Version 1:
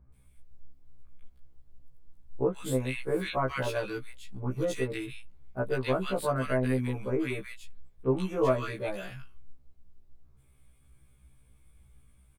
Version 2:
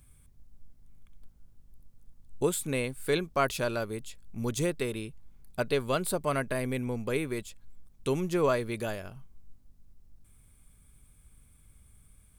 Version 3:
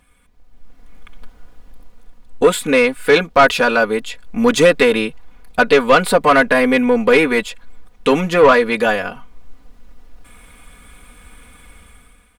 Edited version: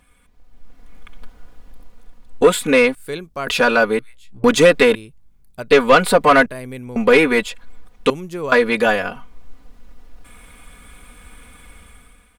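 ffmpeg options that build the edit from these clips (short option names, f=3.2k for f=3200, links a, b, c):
-filter_complex "[1:a]asplit=4[a][b][c][d];[2:a]asplit=6[e][f][g][h][i][j];[e]atrim=end=2.952[k];[a]atrim=start=2.948:end=3.472[l];[f]atrim=start=3.468:end=3.992[m];[0:a]atrim=start=3.988:end=4.442[n];[g]atrim=start=4.438:end=4.952[o];[b]atrim=start=4.948:end=5.712[p];[h]atrim=start=5.708:end=6.462[q];[c]atrim=start=6.458:end=6.962[r];[i]atrim=start=6.958:end=8.102[s];[d]atrim=start=8.098:end=8.522[t];[j]atrim=start=8.518[u];[k][l]acrossfade=d=0.004:c1=hsin:c2=hsin[v];[v][m]acrossfade=d=0.004:c1=hsin:c2=hsin[w];[w][n]acrossfade=d=0.004:c1=hsin:c2=hsin[x];[x][o]acrossfade=d=0.004:c1=hsin:c2=hsin[y];[y][p]acrossfade=d=0.004:c1=hsin:c2=hsin[z];[z][q]acrossfade=d=0.004:c1=hsin:c2=hsin[aa];[aa][r]acrossfade=d=0.004:c1=hsin:c2=hsin[ab];[ab][s]acrossfade=d=0.004:c1=hsin:c2=hsin[ac];[ac][t]acrossfade=d=0.004:c1=hsin:c2=hsin[ad];[ad][u]acrossfade=d=0.004:c1=hsin:c2=hsin"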